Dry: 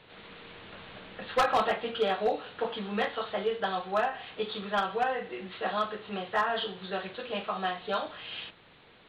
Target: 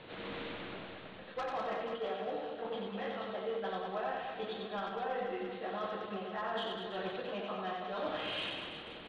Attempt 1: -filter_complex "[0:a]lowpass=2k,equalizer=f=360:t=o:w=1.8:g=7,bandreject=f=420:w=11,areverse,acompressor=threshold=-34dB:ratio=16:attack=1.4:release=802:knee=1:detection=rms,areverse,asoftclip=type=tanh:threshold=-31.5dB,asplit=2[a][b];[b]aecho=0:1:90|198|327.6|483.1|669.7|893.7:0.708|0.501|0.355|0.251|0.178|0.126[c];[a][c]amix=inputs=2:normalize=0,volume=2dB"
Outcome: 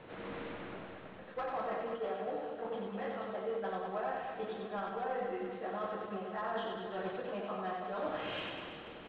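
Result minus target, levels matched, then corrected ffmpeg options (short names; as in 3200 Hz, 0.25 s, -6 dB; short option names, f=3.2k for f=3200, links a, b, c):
4000 Hz band -6.5 dB
-filter_complex "[0:a]lowpass=5.2k,equalizer=f=360:t=o:w=1.8:g=7,bandreject=f=420:w=11,areverse,acompressor=threshold=-34dB:ratio=16:attack=1.4:release=802:knee=1:detection=rms,areverse,asoftclip=type=tanh:threshold=-31.5dB,asplit=2[a][b];[b]aecho=0:1:90|198|327.6|483.1|669.7|893.7:0.708|0.501|0.355|0.251|0.178|0.126[c];[a][c]amix=inputs=2:normalize=0,volume=2dB"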